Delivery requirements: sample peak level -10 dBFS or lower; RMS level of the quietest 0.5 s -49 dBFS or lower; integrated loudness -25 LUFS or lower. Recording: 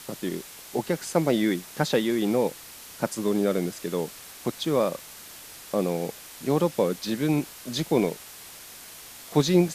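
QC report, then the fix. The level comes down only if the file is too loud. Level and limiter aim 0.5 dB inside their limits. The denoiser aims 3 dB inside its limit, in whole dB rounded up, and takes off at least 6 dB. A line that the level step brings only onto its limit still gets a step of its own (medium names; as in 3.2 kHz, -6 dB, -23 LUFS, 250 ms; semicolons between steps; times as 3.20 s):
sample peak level -7.0 dBFS: fail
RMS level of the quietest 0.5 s -44 dBFS: fail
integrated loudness -27.0 LUFS: pass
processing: noise reduction 8 dB, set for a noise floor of -44 dBFS; peak limiter -10.5 dBFS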